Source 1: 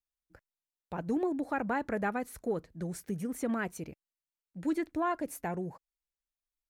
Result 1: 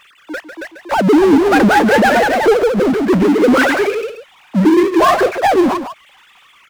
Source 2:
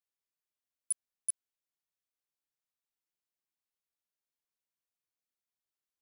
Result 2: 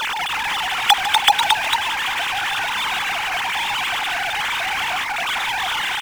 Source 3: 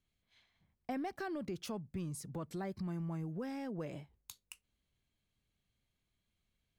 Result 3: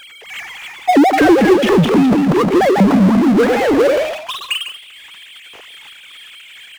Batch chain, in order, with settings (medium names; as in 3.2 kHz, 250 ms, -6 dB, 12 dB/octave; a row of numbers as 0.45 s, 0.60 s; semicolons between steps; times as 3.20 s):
formants replaced by sine waves; compression 4:1, threshold -34 dBFS; speakerphone echo 150 ms, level -18 dB; ever faster or slower copies 295 ms, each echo +1 st, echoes 2, each echo -6 dB; power-law waveshaper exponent 0.5; peak normalisation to -3 dBFS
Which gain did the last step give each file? +21.5 dB, +21.0 dB, +25.0 dB